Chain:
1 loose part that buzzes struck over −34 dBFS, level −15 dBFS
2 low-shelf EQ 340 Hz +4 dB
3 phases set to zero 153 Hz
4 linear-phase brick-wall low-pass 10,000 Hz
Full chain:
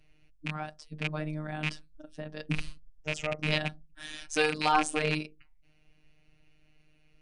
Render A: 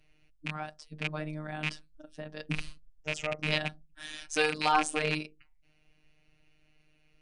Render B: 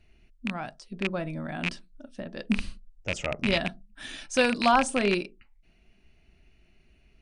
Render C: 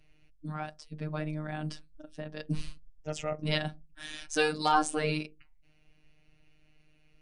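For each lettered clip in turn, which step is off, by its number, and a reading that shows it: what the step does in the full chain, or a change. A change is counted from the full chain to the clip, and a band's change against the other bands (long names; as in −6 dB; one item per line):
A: 2, 125 Hz band −3.0 dB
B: 3, 250 Hz band +4.5 dB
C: 1, 2 kHz band −3.5 dB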